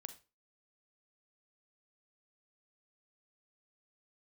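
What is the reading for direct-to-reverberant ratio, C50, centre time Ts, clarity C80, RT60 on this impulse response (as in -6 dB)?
9.5 dB, 12.5 dB, 7 ms, 18.0 dB, 0.30 s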